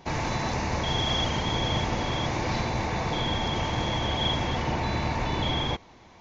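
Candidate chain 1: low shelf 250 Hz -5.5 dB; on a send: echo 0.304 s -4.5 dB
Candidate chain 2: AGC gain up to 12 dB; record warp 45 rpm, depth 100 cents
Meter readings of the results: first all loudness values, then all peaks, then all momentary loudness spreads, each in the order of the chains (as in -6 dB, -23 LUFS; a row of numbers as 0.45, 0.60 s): -27.5, -16.5 LUFS; -14.5, -2.5 dBFS; 3, 5 LU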